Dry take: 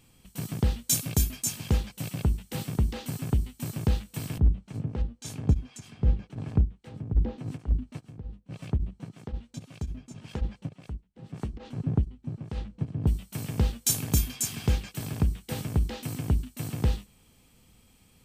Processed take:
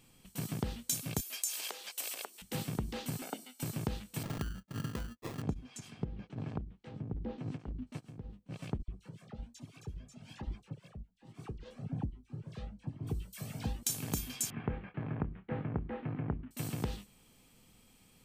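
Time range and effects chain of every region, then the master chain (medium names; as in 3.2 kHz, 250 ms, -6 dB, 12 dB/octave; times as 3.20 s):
1.20–2.42 s: compression 4:1, threshold -33 dBFS + high-pass 440 Hz 24 dB/octave + treble shelf 2.4 kHz +9 dB
3.22–3.63 s: steep high-pass 270 Hz + comb 1.4 ms, depth 68%
4.23–5.42 s: expander -42 dBFS + compression 4:1, threshold -27 dBFS + sample-rate reducer 1.5 kHz
6.04–7.87 s: compression 12:1, threshold -27 dBFS + distance through air 94 m
8.82–13.83 s: phase dispersion lows, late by 61 ms, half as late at 1.5 kHz + Shepard-style flanger rising 1.2 Hz
14.50–16.51 s: inverse Chebyshev low-pass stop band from 6.4 kHz, stop band 60 dB + doubling 26 ms -10 dB
whole clip: peaking EQ 66 Hz -9.5 dB 1.1 oct; compression 6:1, threshold -29 dBFS; trim -2 dB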